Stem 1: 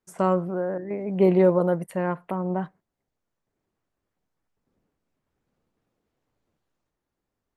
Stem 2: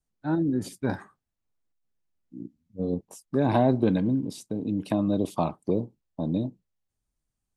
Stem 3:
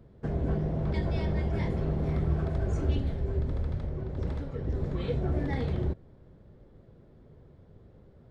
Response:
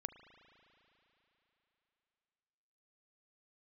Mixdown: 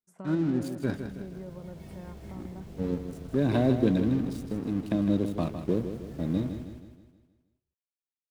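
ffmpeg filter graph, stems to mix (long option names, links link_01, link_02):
-filter_complex "[0:a]volume=-18dB[link_01];[1:a]equalizer=frequency=850:width=2.1:gain=-14,aeval=exprs='sgn(val(0))*max(abs(val(0))-0.00708,0)':channel_layout=same,volume=0dB,asplit=2[link_02][link_03];[link_03]volume=-9dB[link_04];[2:a]acrusher=bits=6:mix=0:aa=0.000001,adelay=700,volume=-17dB,asplit=2[link_05][link_06];[link_06]volume=-4dB[link_07];[link_01][link_05]amix=inputs=2:normalize=0,equalizer=frequency=190:width_type=o:width=0.77:gain=8,acompressor=threshold=-39dB:ratio=6,volume=0dB[link_08];[link_04][link_07]amix=inputs=2:normalize=0,aecho=0:1:158|316|474|632|790|948|1106:1|0.47|0.221|0.104|0.0488|0.0229|0.0108[link_09];[link_02][link_08][link_09]amix=inputs=3:normalize=0"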